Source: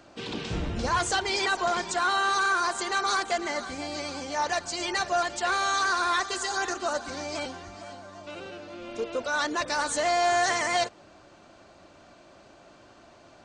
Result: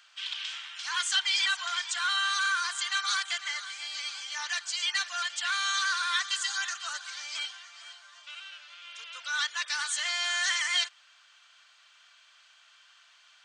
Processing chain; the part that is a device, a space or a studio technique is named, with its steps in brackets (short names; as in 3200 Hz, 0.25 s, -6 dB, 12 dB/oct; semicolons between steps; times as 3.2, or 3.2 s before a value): headphones lying on a table (HPF 1400 Hz 24 dB/oct; bell 3200 Hz +9 dB 0.27 oct); 0.55–1.16 HPF 730 Hz 24 dB/oct